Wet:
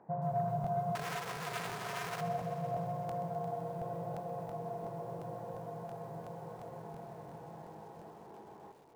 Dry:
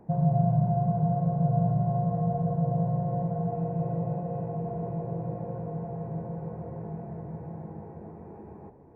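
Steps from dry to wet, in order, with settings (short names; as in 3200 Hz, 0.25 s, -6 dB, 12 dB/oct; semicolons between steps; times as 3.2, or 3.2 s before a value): added harmonics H 5 -29 dB, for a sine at -12.5 dBFS; Chebyshev low-pass 1200 Hz, order 2; bell 130 Hz +4.5 dB 0.81 oct; 0.95–2.21 hard clip -30 dBFS, distortion -8 dB; differentiator; crackling interface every 0.35 s, samples 1024, repeat, from 0.62; lo-fi delay 0.128 s, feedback 80%, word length 12-bit, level -13 dB; gain +16 dB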